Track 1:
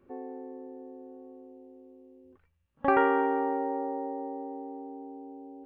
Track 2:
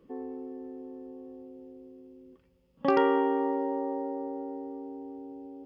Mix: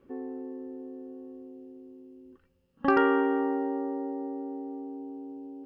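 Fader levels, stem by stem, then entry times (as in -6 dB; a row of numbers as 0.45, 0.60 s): -0.5, -4.0 dB; 0.00, 0.00 s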